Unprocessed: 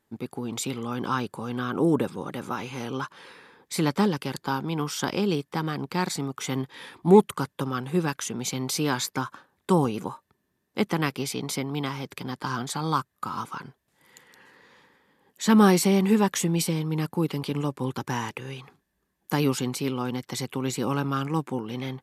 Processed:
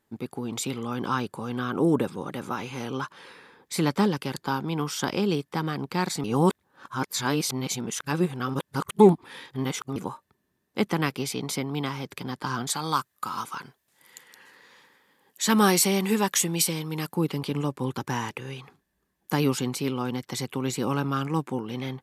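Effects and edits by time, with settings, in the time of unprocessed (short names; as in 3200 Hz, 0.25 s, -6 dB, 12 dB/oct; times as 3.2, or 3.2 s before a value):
6.24–9.96 reverse
12.67–17.15 tilt +2 dB/oct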